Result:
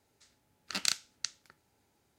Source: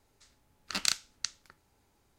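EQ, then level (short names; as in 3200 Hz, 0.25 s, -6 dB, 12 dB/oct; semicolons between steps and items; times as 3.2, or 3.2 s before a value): HPF 89 Hz 12 dB/oct; bell 1100 Hz -5 dB 0.28 oct; -1.5 dB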